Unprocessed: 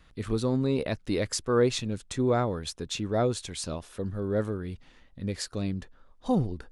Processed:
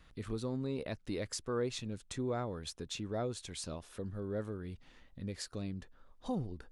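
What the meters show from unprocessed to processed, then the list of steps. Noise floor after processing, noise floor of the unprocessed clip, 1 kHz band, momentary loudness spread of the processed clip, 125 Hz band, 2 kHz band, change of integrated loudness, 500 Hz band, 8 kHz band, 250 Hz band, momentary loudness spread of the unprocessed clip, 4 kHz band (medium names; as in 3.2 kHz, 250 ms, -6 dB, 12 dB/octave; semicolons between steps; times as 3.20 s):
-63 dBFS, -58 dBFS, -11.0 dB, 8 LU, -10.0 dB, -10.0 dB, -10.5 dB, -11.0 dB, -8.5 dB, -10.0 dB, 10 LU, -8.5 dB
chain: compression 1.5:1, threshold -44 dBFS, peak gain reduction 9.5 dB; trim -3 dB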